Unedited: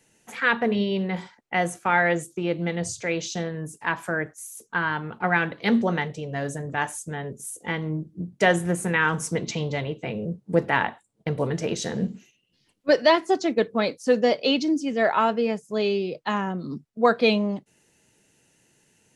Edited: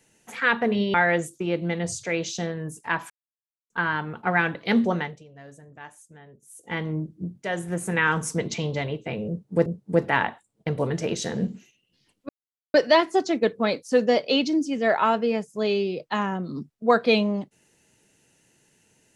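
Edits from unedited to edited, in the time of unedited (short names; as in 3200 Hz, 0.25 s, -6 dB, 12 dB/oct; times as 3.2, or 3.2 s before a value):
0.94–1.91 cut
4.07–4.67 mute
5.88–7.78 dip -16.5 dB, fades 0.33 s
8.4–8.97 fade in, from -13 dB
10.26–10.63 loop, 2 plays
12.89 insert silence 0.45 s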